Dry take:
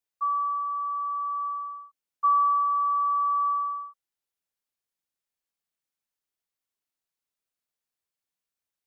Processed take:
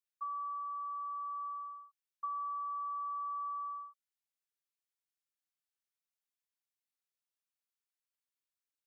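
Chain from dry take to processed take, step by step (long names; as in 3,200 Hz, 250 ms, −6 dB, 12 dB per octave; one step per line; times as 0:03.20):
high-pass filter 1,100 Hz
downward compressor 6 to 1, threshold −31 dBFS, peak gain reduction 9 dB
level −6.5 dB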